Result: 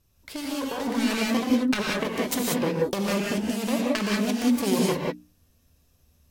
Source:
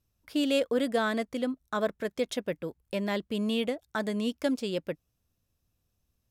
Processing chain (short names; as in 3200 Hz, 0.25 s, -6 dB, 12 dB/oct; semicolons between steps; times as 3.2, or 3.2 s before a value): self-modulated delay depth 0.71 ms; notches 60/120/180/240/300 Hz; negative-ratio compressor -33 dBFS, ratio -0.5; non-linear reverb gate 0.21 s rising, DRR -2.5 dB; gain +5.5 dB; Vorbis 64 kbps 48000 Hz